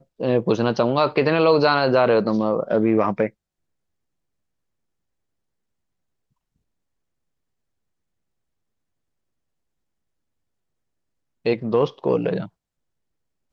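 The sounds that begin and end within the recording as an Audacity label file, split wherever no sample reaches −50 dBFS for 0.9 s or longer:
11.450000	12.490000	sound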